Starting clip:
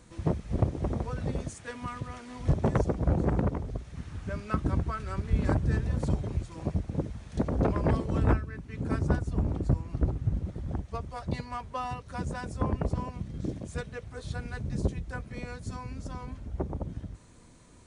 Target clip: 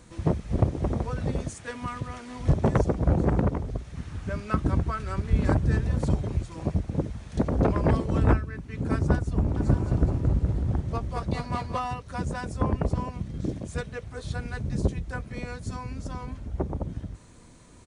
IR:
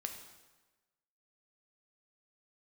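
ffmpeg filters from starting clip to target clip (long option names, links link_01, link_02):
-filter_complex "[0:a]asplit=3[link_01][link_02][link_03];[link_01]afade=type=out:start_time=9.56:duration=0.02[link_04];[link_02]aecho=1:1:220|418|596.2|756.6|900.9:0.631|0.398|0.251|0.158|0.1,afade=type=in:start_time=9.56:duration=0.02,afade=type=out:start_time=11.78:duration=0.02[link_05];[link_03]afade=type=in:start_time=11.78:duration=0.02[link_06];[link_04][link_05][link_06]amix=inputs=3:normalize=0,volume=3.5dB"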